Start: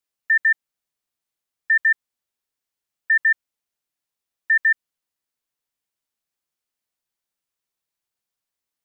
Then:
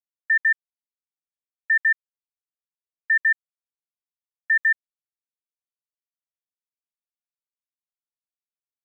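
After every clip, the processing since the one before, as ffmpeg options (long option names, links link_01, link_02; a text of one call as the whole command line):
ffmpeg -i in.wav -af "acrusher=bits=9:mix=0:aa=0.000001,volume=-2dB" out.wav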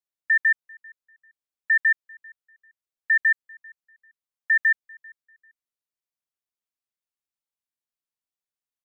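ffmpeg -i in.wav -filter_complex "[0:a]asplit=2[link_01][link_02];[link_02]adelay=393,lowpass=frequency=1900:poles=1,volume=-23dB,asplit=2[link_03][link_04];[link_04]adelay=393,lowpass=frequency=1900:poles=1,volume=0.32[link_05];[link_01][link_03][link_05]amix=inputs=3:normalize=0" out.wav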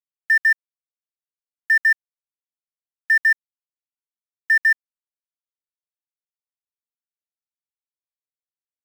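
ffmpeg -i in.wav -af "asoftclip=type=hard:threshold=-15.5dB,acrusher=bits=5:mix=0:aa=0.000001,highpass=frequency=1600:width_type=q:width=2.2,volume=-3dB" out.wav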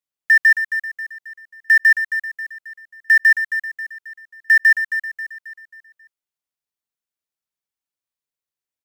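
ffmpeg -i in.wav -af "aecho=1:1:269|538|807|1076|1345:0.316|0.142|0.064|0.0288|0.013,volume=4dB" out.wav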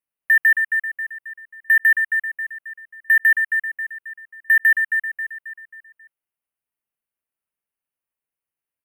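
ffmpeg -i in.wav -af "asoftclip=type=hard:threshold=-12.5dB,asuperstop=centerf=5300:order=20:qfactor=0.95,volume=1.5dB" out.wav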